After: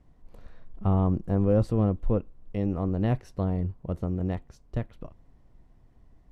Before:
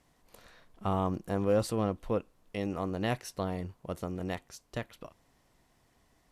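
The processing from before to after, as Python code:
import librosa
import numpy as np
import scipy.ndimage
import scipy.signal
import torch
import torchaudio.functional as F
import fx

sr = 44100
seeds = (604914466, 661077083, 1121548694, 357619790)

y = fx.tilt_eq(x, sr, slope=-4.0)
y = F.gain(torch.from_numpy(y), -2.0).numpy()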